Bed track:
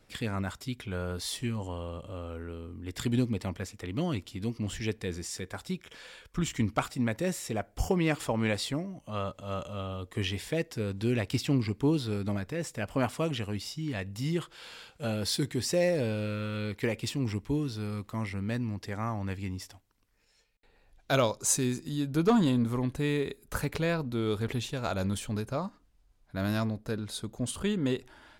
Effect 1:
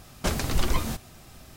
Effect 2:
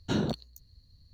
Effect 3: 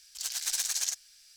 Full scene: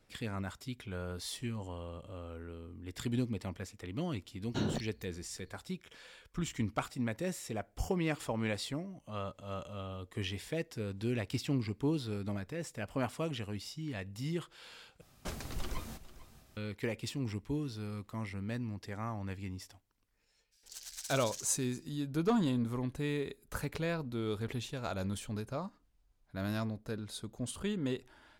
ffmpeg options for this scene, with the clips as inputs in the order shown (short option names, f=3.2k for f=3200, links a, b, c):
-filter_complex "[0:a]volume=-6dB[a];[1:a]aecho=1:1:447:0.15[b];[a]asplit=2[c][d];[c]atrim=end=15.014[e];[b]atrim=end=1.56,asetpts=PTS-STARTPTS,volume=-14.5dB[f];[d]atrim=start=16.566[g];[2:a]atrim=end=1.13,asetpts=PTS-STARTPTS,volume=-5.5dB,afade=t=in:d=0.004:c=hsin,afade=t=out:st=1.126:d=0.004:c=hsin,adelay=4460[h];[3:a]atrim=end=1.36,asetpts=PTS-STARTPTS,volume=-13.5dB,afade=t=in:d=0.02,afade=t=out:st=1.34:d=0.02,adelay=20510[i];[e][f]acrossfade=d=0.004:c1=hsin:c2=hsin[j];[j][g]acrossfade=d=0.004:c1=hsin:c2=hsin[k];[k][h][i]amix=inputs=3:normalize=0"